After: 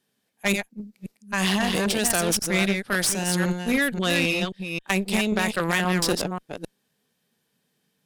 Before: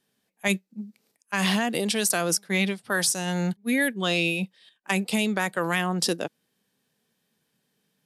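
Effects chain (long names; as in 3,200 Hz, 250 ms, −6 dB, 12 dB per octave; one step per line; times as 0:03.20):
delay that plays each chunk backwards 266 ms, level −5 dB
harmonic generator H 4 −13 dB, 6 −12 dB, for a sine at −8.5 dBFS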